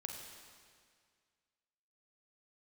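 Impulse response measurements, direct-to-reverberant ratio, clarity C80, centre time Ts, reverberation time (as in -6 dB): 1.5 dB, 4.5 dB, 68 ms, 2.0 s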